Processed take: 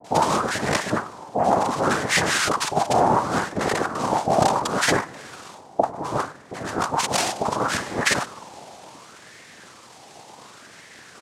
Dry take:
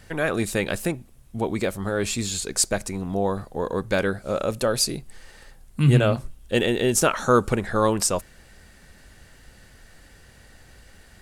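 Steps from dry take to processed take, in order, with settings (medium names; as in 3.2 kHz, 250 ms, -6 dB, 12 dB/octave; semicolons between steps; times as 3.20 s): dynamic bell 340 Hz, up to +7 dB, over -35 dBFS, Q 0.86; compressor with a negative ratio -23 dBFS, ratio -0.5; spring tank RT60 2.9 s, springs 50 ms, DRR 16 dB; noise-vocoded speech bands 2; bands offset in time lows, highs 40 ms, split 780 Hz; sweeping bell 0.69 Hz 750–1900 Hz +13 dB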